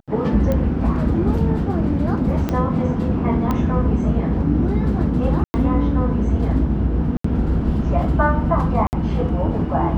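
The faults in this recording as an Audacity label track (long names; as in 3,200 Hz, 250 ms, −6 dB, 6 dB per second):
0.520000	0.520000	click −11 dBFS
2.490000	2.490000	click −9 dBFS
3.510000	3.510000	click −10 dBFS
5.440000	5.540000	drop-out 100 ms
7.170000	7.240000	drop-out 74 ms
8.870000	8.930000	drop-out 59 ms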